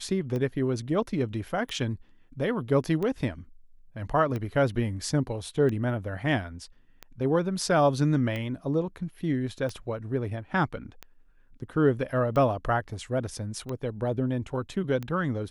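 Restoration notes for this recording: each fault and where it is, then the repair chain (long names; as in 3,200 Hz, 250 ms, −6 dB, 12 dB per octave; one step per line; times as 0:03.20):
scratch tick 45 rpm −21 dBFS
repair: click removal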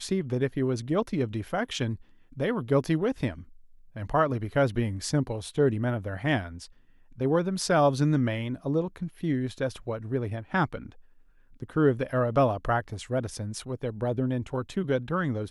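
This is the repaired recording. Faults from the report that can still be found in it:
none of them is left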